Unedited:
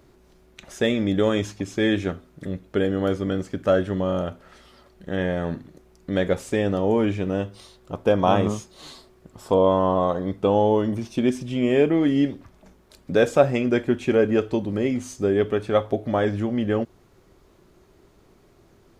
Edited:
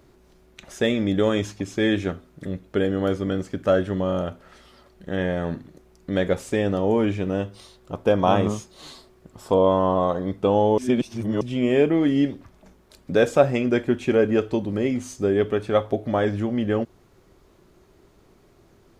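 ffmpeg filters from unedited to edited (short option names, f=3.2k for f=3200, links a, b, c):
-filter_complex "[0:a]asplit=3[a][b][c];[a]atrim=end=10.782[d];[b]atrim=start=10.778:end=11.412,asetpts=PTS-STARTPTS,areverse[e];[c]atrim=start=11.408[f];[d][e]acrossfade=d=0.004:c1=hsin:c2=hsin[g];[g][f]acrossfade=d=0.004:c1=hsin:c2=hsin"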